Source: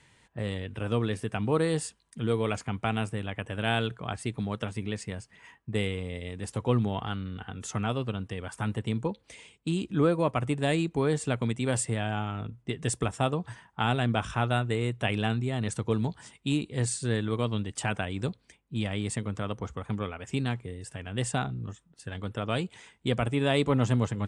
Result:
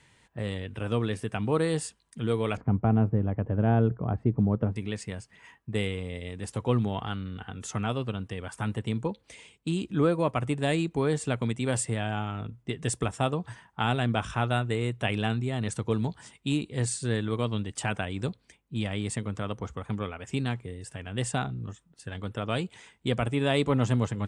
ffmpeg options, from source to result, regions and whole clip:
-filter_complex "[0:a]asettb=1/sr,asplit=3[a][b][c];[a]atrim=end=2.574[d];[b]atrim=start=2.57:end=4.76,asetpts=PTS-STARTPTS,afade=t=in:d=0.004:c=qsin,afade=t=out:st=2.186:d=0.004:c=qsin,lowpass=1.4k,tiltshelf=f=900:g=9[e];[c]atrim=start=4.756[f];[d][e]acrossfade=d=0.004:c1=hsin:c2=qsin[g];[g][f]acrossfade=d=0.004:c1=qsin:c2=hsin"

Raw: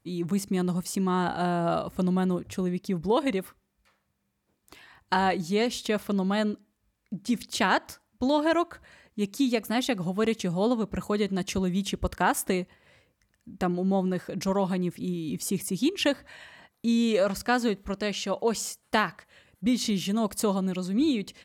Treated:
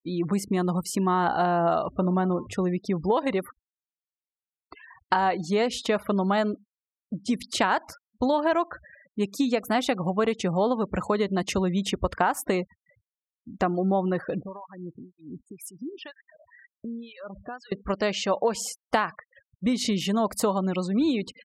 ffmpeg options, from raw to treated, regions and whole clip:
-filter_complex "[0:a]asettb=1/sr,asplit=3[a][b][c];[a]atrim=end=1.954[d];[b]atrim=start=1.95:end=2.47,asetpts=PTS-STARTPTS,afade=t=in:d=0.004:c=qsin,afade=t=out:st=0.516:d=0.004:c=qsin,lowpass=f=2.6k:p=1,bandreject=f=81.25:t=h:w=4,bandreject=f=162.5:t=h:w=4,bandreject=f=243.75:t=h:w=4,bandreject=f=325:t=h:w=4,bandreject=f=406.25:t=h:w=4,bandreject=f=487.5:t=h:w=4,bandreject=f=568.75:t=h:w=4,bandreject=f=650:t=h:w=4,bandreject=f=731.25:t=h:w=4,bandreject=f=812.5:t=h:w=4,bandreject=f=893.75:t=h:w=4,bandreject=f=975:t=h:w=4,bandreject=f=1.05625k:t=h:w=4,bandreject=f=1.1375k:t=h:w=4,bandreject=f=1.21875k:t=h:w=4,bandreject=f=1.3k:t=h:w=4,bandreject=f=1.38125k:t=h:w=4,bandreject=f=1.4625k:t=h:w=4,bandreject=f=1.54375k:t=h:w=4,bandreject=f=1.625k:t=h:w=4,bandreject=f=1.70625k:t=h:w=4,bandreject=f=1.7875k:t=h:w=4,bandreject=f=1.86875k:t=h:w=4,bandreject=f=1.95k:t=h:w=4,bandreject=f=2.03125k:t=h:w=4,bandreject=f=2.1125k:t=h:w=4[e];[c]atrim=start=2.466[f];[d][e]acrossfade=d=0.004:c1=hsin:c2=qsin[g];[g][f]acrossfade=d=0.004:c1=qsin:c2=hsin,asettb=1/sr,asplit=3[h][i][j];[h]atrim=end=14.404[k];[i]atrim=start=14.4:end=17.72,asetpts=PTS-STARTPTS,afade=t=in:d=0.004:c=qsin,afade=t=out:st=3.316:d=0.004:c=qsin,bandreject=f=2.2k:w=18,acompressor=threshold=-37dB:ratio=4:attack=3.2:release=140:knee=1:detection=peak,acrossover=split=930[l][m];[l]aeval=exprs='val(0)*(1-1/2+1/2*cos(2*PI*2*n/s))':c=same[n];[m]aeval=exprs='val(0)*(1-1/2-1/2*cos(2*PI*2*n/s))':c=same[o];[n][o]amix=inputs=2:normalize=0[p];[j]atrim=start=17.716[q];[k][p]acrossfade=d=0.004:c1=hsin:c2=qsin[r];[r][q]acrossfade=d=0.004:c1=qsin:c2=hsin,afftfilt=real='re*gte(hypot(re,im),0.00631)':imag='im*gte(hypot(re,im),0.00631)':win_size=1024:overlap=0.75,equalizer=f=890:t=o:w=2.3:g=9,acompressor=threshold=-21dB:ratio=5,volume=1dB"

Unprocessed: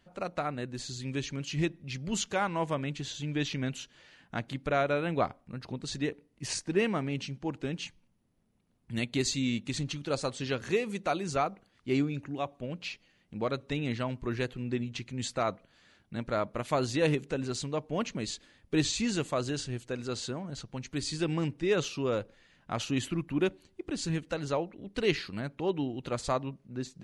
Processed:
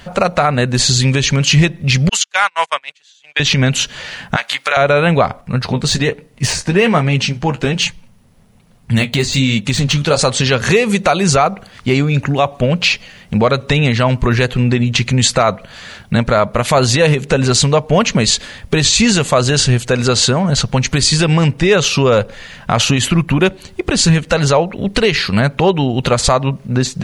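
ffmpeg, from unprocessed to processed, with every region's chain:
-filter_complex "[0:a]asettb=1/sr,asplit=3[a][b][c];[a]atrim=end=2.094[d];[b]atrim=start=2.09:end=3.4,asetpts=PTS-STARTPTS,afade=t=in:d=0.004:c=qsin,afade=t=out:st=1.306:d=0.004:c=qsin,agate=range=-36dB:threshold=-31dB:ratio=16:release=100:detection=peak,highpass=1.4k[e];[c]atrim=start=3.396[f];[d][e]acrossfade=d=0.004:c1=hsin:c2=qsin[g];[g][f]acrossfade=d=0.004:c1=qsin:c2=hsin,asettb=1/sr,asplit=3[h][i][j];[h]atrim=end=4.364[k];[i]atrim=start=4.36:end=4.77,asetpts=PTS-STARTPTS,afade=t=in:d=0.004:c=qsin,afade=t=out:st=0.406:d=0.004:c=qsin,highpass=1.2k,asplit=2[l][m];[m]adelay=14,volume=-4.5dB[n];[l][n]amix=inputs=2:normalize=0,atrim=end_sample=18081[o];[j]atrim=start=4.766[p];[k][o]acrossfade=d=0.004:c1=hsin:c2=qsin[q];[q][p]acrossfade=d=0.004:c1=qsin:c2=hsin,asettb=1/sr,asplit=3[r][s][t];[r]atrim=end=5.414[u];[s]atrim=start=5.41:end=10.19,asetpts=PTS-STARTPTS,afade=t=in:d=0.004:c=qsin,afade=t=out:st=4.776:d=0.004:c=qsin,deesser=0.95,flanger=delay=5.8:depth=7.5:regen=-41:speed=1.2:shape=sinusoidal[v];[t]atrim=start=10.186[w];[u][v]acrossfade=d=0.004:c1=hsin:c2=qsin[x];[x][w]acrossfade=d=0.004:c1=qsin:c2=hsin,acompressor=threshold=-37dB:ratio=2.5,equalizer=f=310:t=o:w=0.51:g=-12,alimiter=level_in=30dB:limit=-1dB:release=50:level=0:latency=1,volume=-1dB"

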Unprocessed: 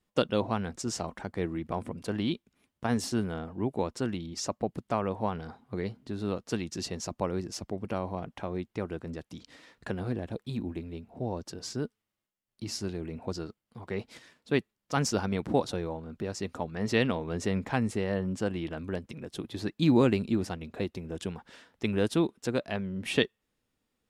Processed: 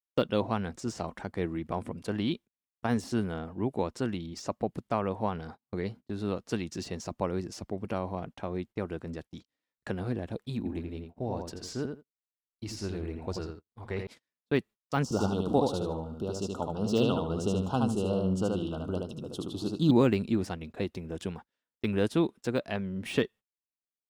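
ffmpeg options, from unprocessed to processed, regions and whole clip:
-filter_complex "[0:a]asettb=1/sr,asplit=3[a][b][c];[a]atrim=end=10.574[d];[b]atrim=start=10.57:end=14.07,asetpts=PTS-STARTPTS,afade=t=in:d=0.004:c=qsin,afade=t=out:st=3.496:d=0.004:c=qsin,asubboost=boost=7.5:cutoff=61,asplit=2[e][f];[f]adelay=84,lowpass=f=2.9k:p=1,volume=-5dB,asplit=2[g][h];[h]adelay=84,lowpass=f=2.9k:p=1,volume=0.16,asplit=2[i][j];[j]adelay=84,lowpass=f=2.9k:p=1,volume=0.16[k];[e][g][i][k]amix=inputs=4:normalize=0,atrim=end_sample=154350[l];[c]atrim=start=14.066[m];[d][l]acrossfade=d=0.004:c1=hsin:c2=qsin[n];[n][m]acrossfade=d=0.004:c1=qsin:c2=hsin,asettb=1/sr,asplit=3[o][p][q];[o]atrim=end=15.034[r];[p]atrim=start=15.03:end=19.91,asetpts=PTS-STARTPTS,afade=t=in:d=0.004:c=qsin,afade=t=out:st=4.876:d=0.004:c=qsin,asuperstop=centerf=2000:order=12:qfactor=1.5,aecho=1:1:75|150|225|300:0.708|0.177|0.0442|0.0111,atrim=end_sample=215208[s];[q]atrim=start=19.906[t];[r][s]acrossfade=d=0.004:c1=hsin:c2=qsin[u];[u][t]acrossfade=d=0.004:c1=qsin:c2=hsin,agate=range=-35dB:threshold=-44dB:ratio=16:detection=peak,deesser=0.95"

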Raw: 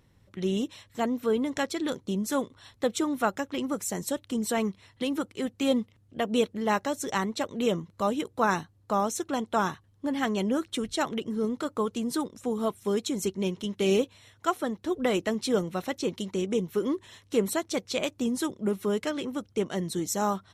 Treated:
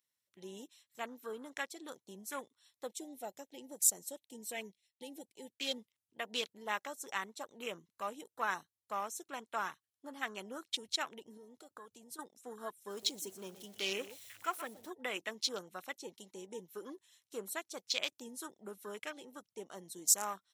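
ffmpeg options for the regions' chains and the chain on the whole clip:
-filter_complex "[0:a]asettb=1/sr,asplit=3[a][b][c];[a]atrim=end=2.934[d];[b]atrim=start=2.93:end=5.78,asetpts=PTS-STARTPTS,afade=t=in:d=0.004:c=qsin,afade=t=out:st=2.846:d=0.004:c=qsin,agate=range=-33dB:threshold=-51dB:ratio=3:release=100:detection=peak,asuperstop=centerf=1200:order=4:qfactor=1.1[e];[c]atrim=start=5.776[f];[d][e]acrossfade=d=0.004:c1=hsin:c2=qsin[g];[g][f]acrossfade=d=0.004:c1=qsin:c2=hsin,asettb=1/sr,asplit=3[h][i][j];[h]atrim=end=11.374[k];[i]atrim=start=11.37:end=12.19,asetpts=PTS-STARTPTS,afade=t=in:d=0.004:c=qsin,afade=t=out:st=0.816:d=0.004:c=qsin,acompressor=threshold=-32dB:ratio=8:attack=3.2:release=140:knee=1:detection=peak,asubboost=boost=8.5:cutoff=120[l];[j]atrim=start=12.186[m];[k][l]acrossfade=d=0.004:c1=hsin:c2=qsin[n];[n][m]acrossfade=d=0.004:c1=qsin:c2=hsin,asettb=1/sr,asplit=3[o][p][q];[o]atrim=end=12.904[r];[p]atrim=start=12.9:end=14.9,asetpts=PTS-STARTPTS,afade=t=in:d=0.004:c=qsin,afade=t=out:st=1.996:d=0.004:c=qsin,aeval=exprs='val(0)+0.5*0.0133*sgn(val(0))':c=same,aecho=1:1:123:0.224,atrim=end_sample=88200[s];[q]atrim=start=14.896[t];[r][s]acrossfade=d=0.004:c1=hsin:c2=qsin[u];[u][t]acrossfade=d=0.004:c1=qsin:c2=hsin,afwtdn=0.0126,aderivative,volume=6.5dB"

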